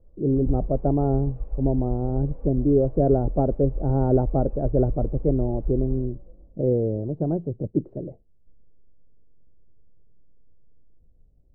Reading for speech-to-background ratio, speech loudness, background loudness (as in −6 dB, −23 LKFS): 10.0 dB, −24.5 LKFS, −34.5 LKFS